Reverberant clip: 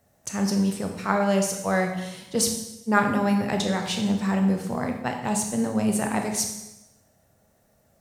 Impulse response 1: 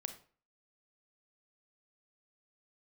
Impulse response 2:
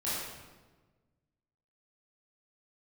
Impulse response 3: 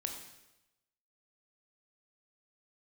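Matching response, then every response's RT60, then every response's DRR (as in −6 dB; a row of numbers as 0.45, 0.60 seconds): 3; 0.40, 1.3, 0.95 seconds; 8.0, −10.5, 3.0 decibels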